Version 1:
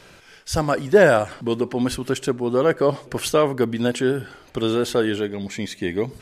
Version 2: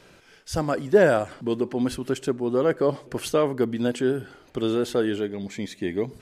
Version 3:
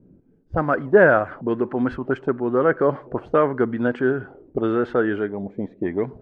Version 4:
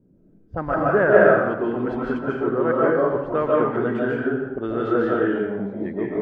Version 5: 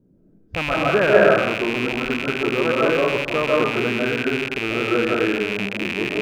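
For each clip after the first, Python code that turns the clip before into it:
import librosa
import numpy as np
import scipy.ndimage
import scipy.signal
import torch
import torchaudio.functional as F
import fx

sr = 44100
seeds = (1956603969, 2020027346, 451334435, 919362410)

y1 = fx.peak_eq(x, sr, hz=300.0, db=4.5, octaves=2.1)
y1 = F.gain(torch.from_numpy(y1), -6.5).numpy()
y2 = fx.envelope_lowpass(y1, sr, base_hz=230.0, top_hz=1500.0, q=2.4, full_db=-22.5, direction='up')
y2 = F.gain(torch.from_numpy(y2), 2.0).numpy()
y3 = fx.rev_freeverb(y2, sr, rt60_s=1.0, hf_ratio=0.7, predelay_ms=105, drr_db=-5.5)
y3 = F.gain(torch.from_numpy(y3), -6.0).numpy()
y4 = fx.rattle_buzz(y3, sr, strikes_db=-37.0, level_db=-13.0)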